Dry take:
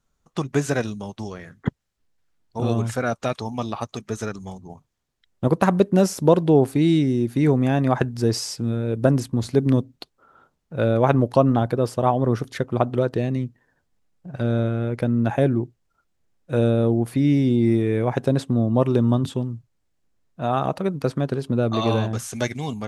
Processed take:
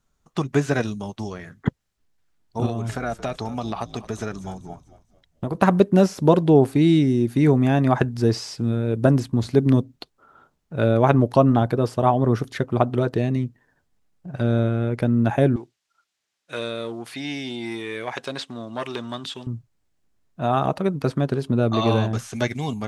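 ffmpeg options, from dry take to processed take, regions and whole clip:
-filter_complex "[0:a]asettb=1/sr,asplit=3[s0][s1][s2];[s0]atrim=end=2.664[s3];[s1]atrim=start=2.66:end=5.55,asetpts=PTS-STARTPTS,afade=t=in:d=0.004:c=qsin,afade=t=out:st=2.886:d=0.004:c=qsin,equalizer=f=710:t=o:w=0.28:g=5,acompressor=threshold=0.0708:ratio=5:attack=3.2:release=140:knee=1:detection=peak,asplit=5[s4][s5][s6][s7][s8];[s5]adelay=223,afreqshift=-64,volume=0.158[s9];[s6]adelay=446,afreqshift=-128,volume=0.0653[s10];[s7]adelay=669,afreqshift=-192,volume=0.0266[s11];[s8]adelay=892,afreqshift=-256,volume=0.011[s12];[s4][s9][s10][s11][s12]amix=inputs=5:normalize=0,atrim=end_sample=127449[s13];[s2]atrim=start=5.546[s14];[s3][s13]acrossfade=d=0.004:c1=hsin:c2=qsin[s15];[s15][s14]acrossfade=d=0.004:c1=qsin:c2=hsin,asettb=1/sr,asplit=3[s16][s17][s18];[s16]atrim=end=15.564[s19];[s17]atrim=start=15.56:end=19.47,asetpts=PTS-STARTPTS,afade=t=in:d=0.004:c=qsin,afade=t=out:st=3.906:d=0.004:c=qsin,acontrast=86,bandpass=f=4100:t=q:w=0.7[s20];[s18]atrim=start=19.466[s21];[s19][s20]acrossfade=d=0.004:c1=hsin:c2=qsin[s22];[s22][s21]acrossfade=d=0.004:c1=qsin:c2=hsin,bandreject=f=510:w=12,acrossover=split=4800[s23][s24];[s24]acompressor=threshold=0.00631:ratio=4:attack=1:release=60[s25];[s23][s25]amix=inputs=2:normalize=0,volume=1.19"

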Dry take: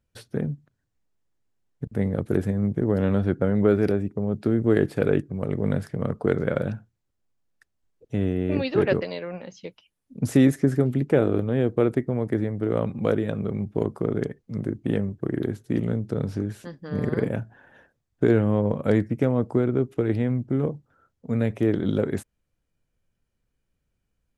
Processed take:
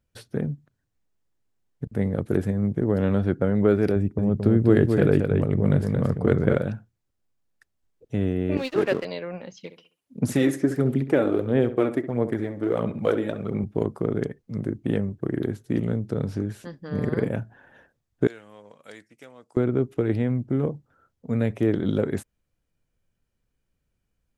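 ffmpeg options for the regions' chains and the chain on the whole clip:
-filter_complex "[0:a]asettb=1/sr,asplit=3[s0][s1][s2];[s0]atrim=end=3.964[s3];[s1]atrim=start=3.96:end=6.57,asetpts=PTS-STARTPTS,afade=t=in:d=0.004:c=qsin,afade=t=out:st=2.606:d=0.004:c=qsin,lowshelf=f=130:g=10,aecho=1:1:225:0.562,atrim=end_sample=115101[s4];[s2]atrim=start=6.566[s5];[s3][s4]acrossfade=d=0.004:c1=hsin:c2=qsin[s6];[s6][s5]acrossfade=d=0.004:c1=qsin:c2=hsin,asettb=1/sr,asplit=3[s7][s8][s9];[s7]atrim=end=8.574[s10];[s8]atrim=start=8.57:end=9.05,asetpts=PTS-STARTPTS,afade=t=in:d=0.004:c=qsin,afade=t=out:st=0.476:d=0.004:c=qsin,highpass=210,aeval=exprs='sgn(val(0))*max(abs(val(0))-0.0126,0)':c=same[s11];[s9]atrim=start=9.046[s12];[s10][s11]acrossfade=d=0.004:c1=hsin:c2=qsin[s13];[s13][s12]acrossfade=d=0.004:c1=qsin:c2=hsin,asettb=1/sr,asplit=3[s14][s15][s16];[s14]atrim=end=9.574[s17];[s15]atrim=start=9.57:end=13.64,asetpts=PTS-STARTPTS,afade=t=in:d=0.004:c=qsin,afade=t=out:st=4.066:d=0.004:c=qsin,highpass=f=220:p=1,aphaser=in_gain=1:out_gain=1:delay=3.7:decay=0.48:speed=1.5:type=sinusoidal,asplit=2[s18][s19];[s19]adelay=66,lowpass=f=2400:p=1,volume=0.266,asplit=2[s20][s21];[s21]adelay=66,lowpass=f=2400:p=1,volume=0.36,asplit=2[s22][s23];[s23]adelay=66,lowpass=f=2400:p=1,volume=0.36,asplit=2[s24][s25];[s25]adelay=66,lowpass=f=2400:p=1,volume=0.36[s26];[s18][s20][s22][s24][s26]amix=inputs=5:normalize=0,atrim=end_sample=179487[s27];[s16]atrim=start=13.636[s28];[s17][s27]acrossfade=d=0.004:c1=hsin:c2=qsin[s29];[s29][s28]acrossfade=d=0.004:c1=qsin:c2=hsin,asettb=1/sr,asplit=3[s30][s31][s32];[s30]atrim=end=18.274[s33];[s31]atrim=start=18.27:end=19.57,asetpts=PTS-STARTPTS,afade=t=in:d=0.004:c=qsin,afade=t=out:st=1.296:d=0.004:c=qsin,lowpass=8300,aderivative[s34];[s32]atrim=start=19.566[s35];[s33][s34]acrossfade=d=0.004:c1=hsin:c2=qsin[s36];[s36][s35]acrossfade=d=0.004:c1=qsin:c2=hsin"

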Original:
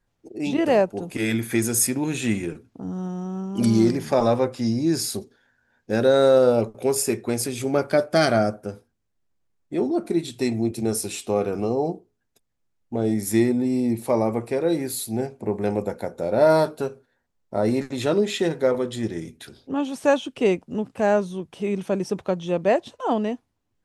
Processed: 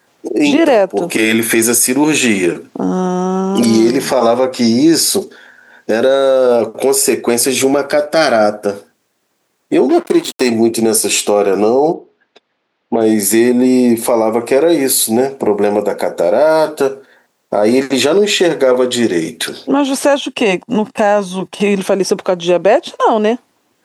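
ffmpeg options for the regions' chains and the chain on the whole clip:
-filter_complex "[0:a]asettb=1/sr,asplit=3[s0][s1][s2];[s0]atrim=end=9.894[s3];[s1]atrim=start=9.89:end=10.5,asetpts=PTS-STARTPTS,afade=t=in:d=0.004:c=qsin,afade=t=out:st=0.606:d=0.004:c=qsin,equalizer=f=100:t=o:w=0.89:g=-8.5,aeval=exprs='sgn(val(0))*max(abs(val(0))-0.0119,0)':c=same[s4];[s2]atrim=start=10.496[s5];[s3][s4]acrossfade=d=0.004:c1=hsin:c2=qsin[s6];[s6][s5]acrossfade=d=0.004:c1=qsin:c2=hsin,asettb=1/sr,asplit=3[s7][s8][s9];[s7]atrim=end=11.934[s10];[s8]atrim=start=11.93:end=13.01,asetpts=PTS-STARTPTS,afade=t=in:d=0.004:c=qsin,afade=t=out:st=1.076:d=0.004:c=qsin,lowpass=f=3900:w=0.5412,lowpass=f=3900:w=1.3066,lowshelf=f=180:g=-7[s11];[s9]atrim=start=13.006[s12];[s10][s11]acrossfade=d=0.004:c1=hsin:c2=qsin[s13];[s13][s12]acrossfade=d=0.004:c1=qsin:c2=hsin,asettb=1/sr,asplit=3[s14][s15][s16];[s14]atrim=end=20.214[s17];[s15]atrim=start=20.21:end=21.8,asetpts=PTS-STARTPTS,afade=t=in:d=0.004:c=qsin,afade=t=out:st=1.586:d=0.004:c=qsin,agate=range=0.316:threshold=0.00562:ratio=16:release=100:detection=peak,bandreject=f=370:w=12,aecho=1:1:1.1:0.39,atrim=end_sample=70119[s18];[s16]atrim=start=21.796[s19];[s17][s18]acrossfade=d=0.004:c1=hsin:c2=qsin[s20];[s20][s19]acrossfade=d=0.004:c1=qsin:c2=hsin,highpass=310,acompressor=threshold=0.0141:ratio=2,alimiter=level_in=17.8:limit=0.891:release=50:level=0:latency=1,volume=0.891"

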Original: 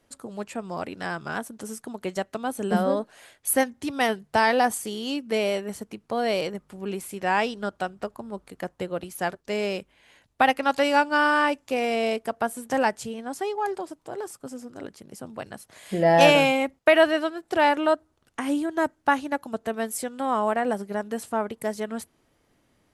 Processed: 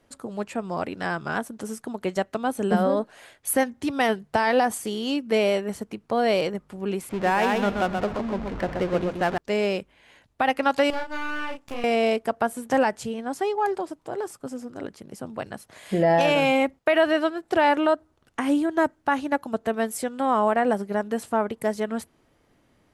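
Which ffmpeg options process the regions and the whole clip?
-filter_complex "[0:a]asettb=1/sr,asplit=3[s0][s1][s2];[s0]atrim=end=7.094[s3];[s1]atrim=start=7.09:end=9.38,asetpts=PTS-STARTPTS,afade=t=in:d=0.004:c=qsin,afade=t=out:st=2.286:d=0.004:c=qsin,aeval=exprs='val(0)+0.5*0.0237*sgn(val(0))':c=same,adynamicsmooth=sensitivity=7:basefreq=750,aecho=1:1:128|256|384:0.562|0.146|0.038,atrim=end_sample=100989[s4];[s2]atrim=start=9.376[s5];[s3][s4]acrossfade=d=0.004:c1=hsin:c2=qsin[s6];[s6][s5]acrossfade=d=0.004:c1=qsin:c2=hsin,asettb=1/sr,asplit=3[s7][s8][s9];[s7]atrim=end=10.904[s10];[s8]atrim=start=10.9:end=11.84,asetpts=PTS-STARTPTS,afade=t=in:d=0.004:c=qsin,afade=t=out:st=0.936:d=0.004:c=qsin,acompressor=threshold=0.02:ratio=2.5:attack=3.2:release=140:knee=1:detection=peak,aeval=exprs='max(val(0),0)':c=same,asplit=2[s11][s12];[s12]adelay=33,volume=0.668[s13];[s11][s13]amix=inputs=2:normalize=0,atrim=end_sample=41454[s14];[s9]atrim=start=11.836[s15];[s10][s14]acrossfade=d=0.004:c1=hsin:c2=qsin[s16];[s16][s15]acrossfade=d=0.004:c1=qsin:c2=hsin,highshelf=f=4100:g=-6,alimiter=limit=0.188:level=0:latency=1:release=82,volume=1.5"

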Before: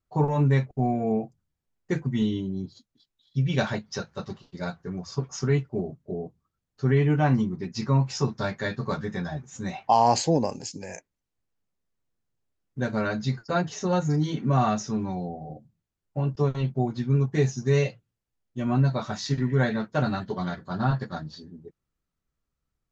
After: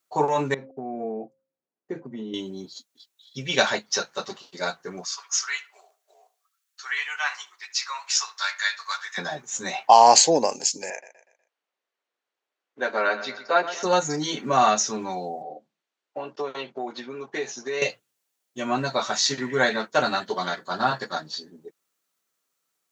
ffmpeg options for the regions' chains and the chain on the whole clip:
-filter_complex "[0:a]asettb=1/sr,asplit=3[s0][s1][s2];[s0]atrim=end=0.544[s3];[s1]atrim=start=0.54:end=2.34,asetpts=PTS-STARTPTS,afade=t=in:d=0.004:c=qsin,afade=t=out:st=1.796:d=0.004:c=qsin,bandreject=f=266.9:t=h:w=4,bandreject=f=533.8:t=h:w=4,acompressor=threshold=0.0631:ratio=10:attack=3.2:release=140:knee=1:detection=peak,bandpass=f=250:t=q:w=0.79[s4];[s2]atrim=start=2.336[s5];[s3][s4]acrossfade=d=0.004:c1=hsin:c2=qsin[s6];[s6][s5]acrossfade=d=0.004:c1=qsin:c2=hsin,asettb=1/sr,asplit=3[s7][s8][s9];[s7]atrim=end=5.054[s10];[s8]atrim=start=5.05:end=9.18,asetpts=PTS-STARTPTS,afade=t=in:d=0.004:c=qsin,afade=t=out:st=4.126:d=0.004:c=qsin,highpass=f=1200:w=0.5412,highpass=f=1200:w=1.3066,asplit=2[s11][s12];[s12]adelay=74,lowpass=f=2000:p=1,volume=0.168,asplit=2[s13][s14];[s14]adelay=74,lowpass=f=2000:p=1,volume=0.3,asplit=2[s15][s16];[s16]adelay=74,lowpass=f=2000:p=1,volume=0.3[s17];[s11][s13][s15][s17]amix=inputs=4:normalize=0,atrim=end_sample=182133[s18];[s9]atrim=start=9.176[s19];[s10][s18]acrossfade=d=0.004:c1=hsin:c2=qsin[s20];[s20][s19]acrossfade=d=0.004:c1=qsin:c2=hsin,asettb=1/sr,asplit=3[s21][s22][s23];[s21]atrim=end=10.904[s24];[s22]atrim=start=10.9:end=13.83,asetpts=PTS-STARTPTS,afade=t=in:d=0.004:c=qsin,afade=t=out:st=2.926:d=0.004:c=qsin,highpass=360,lowpass=2900,aecho=1:1:122|244|366|488:0.224|0.0895|0.0358|0.0143,atrim=end_sample=129213[s25];[s23]atrim=start=13.826[s26];[s24][s25]acrossfade=d=0.004:c1=hsin:c2=qsin[s27];[s27][s26]acrossfade=d=0.004:c1=qsin:c2=hsin,asettb=1/sr,asplit=3[s28][s29][s30];[s28]atrim=end=15.424[s31];[s29]atrim=start=15.42:end=17.82,asetpts=PTS-STARTPTS,afade=t=in:d=0.004:c=qsin,afade=t=out:st=2.396:d=0.004:c=qsin,acompressor=threshold=0.0562:ratio=4:attack=3.2:release=140:knee=1:detection=peak,highpass=270,lowpass=3700[s32];[s30]atrim=start=17.816[s33];[s31][s32]acrossfade=d=0.004:c1=hsin:c2=qsin[s34];[s34][s33]acrossfade=d=0.004:c1=qsin:c2=hsin,highpass=440,highshelf=f=3400:g=10,bandreject=f=5000:w=20,volume=2.11"

